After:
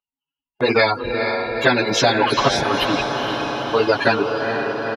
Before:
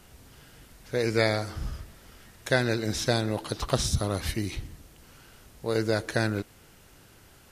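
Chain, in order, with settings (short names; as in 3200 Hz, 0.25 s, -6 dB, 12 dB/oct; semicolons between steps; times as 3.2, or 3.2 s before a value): per-bin expansion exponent 3; tilt -3.5 dB/oct; notch 1900 Hz, Q 6; comb 7.2 ms, depth 74%; compressor 5:1, threshold -31 dBFS, peak gain reduction 16 dB; plain phase-vocoder stretch 0.66×; air absorption 330 m; on a send: diffused feedback echo 0.459 s, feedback 61%, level -12 dB; on the sum: gate with hold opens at -53 dBFS; HPF 660 Hz 12 dB/oct; maximiser +36 dB; spectral compressor 2:1; gain -1 dB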